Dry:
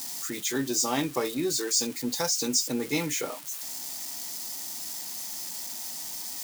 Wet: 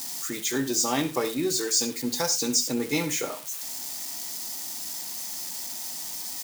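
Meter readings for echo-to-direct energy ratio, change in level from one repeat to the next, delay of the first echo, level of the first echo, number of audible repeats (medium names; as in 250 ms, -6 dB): -12.5 dB, no regular repeats, 67 ms, -14.0 dB, 2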